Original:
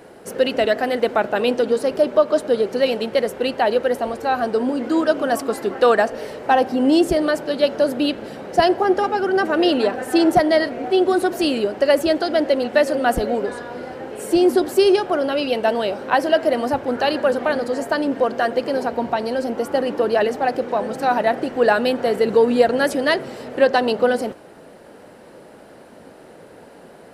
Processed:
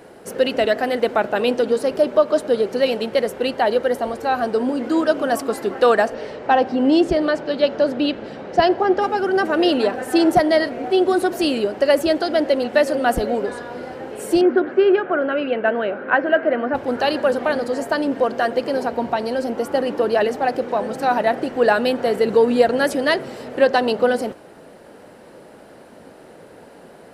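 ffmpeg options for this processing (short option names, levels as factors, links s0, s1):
-filter_complex "[0:a]asettb=1/sr,asplit=3[s0][s1][s2];[s0]atrim=end=3.524[s3];[s1]atrim=start=3.52:end=4.16,asetpts=PTS-STARTPTS,afade=t=in:d=0.004:c=qsin,afade=t=out:st=0.636:d=0.004:c=qsin,bandreject=f=2600:w=13[s4];[s2]atrim=start=4.156[s5];[s3][s4]acrossfade=d=0.004:c1=hsin:c2=qsin[s6];[s6][s5]acrossfade=d=0.004:c1=qsin:c2=hsin,asettb=1/sr,asplit=3[s7][s8][s9];[s7]atrim=end=6.144[s10];[s8]atrim=start=6.14:end=9.02,asetpts=PTS-STARTPTS,afade=t=in:d=0.004:c=qsin,afade=t=out:st=2.876:d=0.004:c=qsin,lowpass=5000[s11];[s9]atrim=start=9.016[s12];[s10][s11]acrossfade=d=0.004:c1=hsin:c2=qsin[s13];[s13][s12]acrossfade=d=0.004:c1=qsin:c2=hsin,asettb=1/sr,asplit=3[s14][s15][s16];[s14]atrim=end=14.414[s17];[s15]atrim=start=14.41:end=16.75,asetpts=PTS-STARTPTS,afade=t=in:d=0.004:c=qsin,afade=t=out:st=2.336:d=0.004:c=qsin,highpass=f=110:w=0.5412,highpass=f=110:w=1.3066,equalizer=f=130:t=q:w=4:g=-8,equalizer=f=880:t=q:w=4:g=-6,equalizer=f=1500:t=q:w=4:g=8,lowpass=f=2500:w=0.5412,lowpass=f=2500:w=1.3066[s18];[s16]atrim=start=16.746[s19];[s17][s18]acrossfade=d=0.004:c1=hsin:c2=qsin[s20];[s20][s19]acrossfade=d=0.004:c1=qsin:c2=hsin"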